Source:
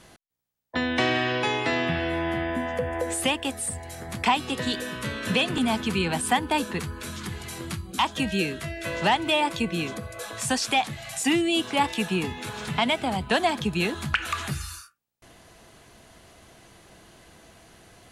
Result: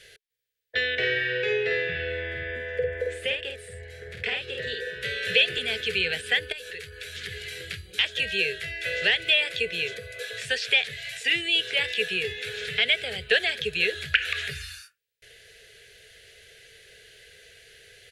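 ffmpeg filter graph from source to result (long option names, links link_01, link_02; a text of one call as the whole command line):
ffmpeg -i in.wav -filter_complex "[0:a]asettb=1/sr,asplit=3[link_01][link_02][link_03];[link_01]atrim=end=0.954[link_04];[link_02]atrim=start=0.95:end=5.03,asetpts=PTS-STARTPTS,afade=type=in:duration=0.004:curve=qsin,afade=type=out:start_time=4.076:duration=0.004:curve=qsin,lowpass=frequency=1100:poles=1,asplit=2[link_05][link_06];[link_06]adelay=50,volume=-4dB[link_07];[link_05][link_07]amix=inputs=2:normalize=0,atrim=end_sample=179928[link_08];[link_03]atrim=start=5.026[link_09];[link_04][link_08]acrossfade=duration=0.004:curve1=hsin:curve2=qsin[link_10];[link_10][link_09]acrossfade=duration=0.004:curve1=qsin:curve2=hsin,asettb=1/sr,asplit=3[link_11][link_12][link_13];[link_11]atrim=end=6.524[link_14];[link_12]atrim=start=6.52:end=7.15,asetpts=PTS-STARTPTS,afade=type=in:duration=0.004:curve=qsin,afade=type=out:start_time=0.626:duration=0.004:curve=qsin,equalizer=frequency=210:width=1.8:gain=-9,acompressor=threshold=-33dB:ratio=8:attack=3.2:release=140:knee=1:detection=peak,aeval=exprs='(tanh(12.6*val(0)+0.4)-tanh(0.4))/12.6':channel_layout=same[link_15];[link_13]atrim=start=7.146[link_16];[link_14][link_15]acrossfade=duration=0.004:curve1=hsin:curve2=qsin[link_17];[link_17][link_16]acrossfade=duration=0.004:curve1=qsin:curve2=hsin,acrossover=split=4300[link_18][link_19];[link_19]acompressor=threshold=-45dB:ratio=4:attack=1:release=60[link_20];[link_18][link_20]amix=inputs=2:normalize=0,firequalizer=gain_entry='entry(100,0);entry(290,-22);entry(430,13);entry(640,-4);entry(960,-24);entry(1600,12);entry(3500,13);entry(6100,6)':delay=0.05:min_phase=1,volume=-6.5dB" out.wav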